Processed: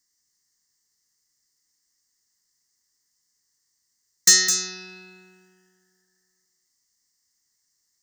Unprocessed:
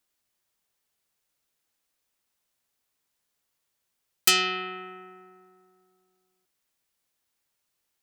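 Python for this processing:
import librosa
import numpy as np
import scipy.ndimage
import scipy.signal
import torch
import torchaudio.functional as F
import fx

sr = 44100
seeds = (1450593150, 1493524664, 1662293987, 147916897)

y = fx.band_shelf(x, sr, hz=5800.0, db=13.5, octaves=1.7)
y = np.clip(y, -10.0 ** (-6.0 / 20.0), 10.0 ** (-6.0 / 20.0))
y = fx.fixed_phaser(y, sr, hz=2400.0, stages=6)
y = fx.formant_shift(y, sr, semitones=5)
y = y + 10.0 ** (-7.5 / 20.0) * np.pad(y, (int(210 * sr / 1000.0), 0))[:len(y)]
y = y * librosa.db_to_amplitude(1.0)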